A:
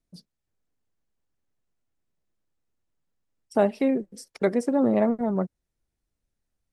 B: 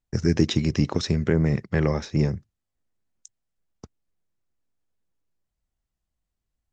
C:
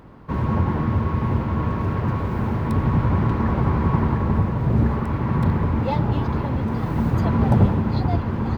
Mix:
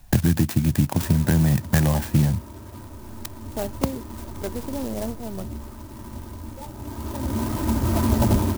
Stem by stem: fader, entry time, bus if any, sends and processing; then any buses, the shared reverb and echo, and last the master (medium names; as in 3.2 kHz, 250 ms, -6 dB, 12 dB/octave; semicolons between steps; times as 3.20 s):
-8.5 dB, 0.00 s, no send, treble shelf 5.9 kHz +9.5 dB
+0.5 dB, 0.00 s, no send, comb 1.2 ms, depth 78%; three bands compressed up and down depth 100%
+2.0 dB, 0.70 s, no send, comb 3.2 ms, depth 82%; flange 1.9 Hz, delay 9.4 ms, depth 6.9 ms, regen -69%; auto duck -15 dB, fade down 1.50 s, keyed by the second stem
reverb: none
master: sampling jitter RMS 0.086 ms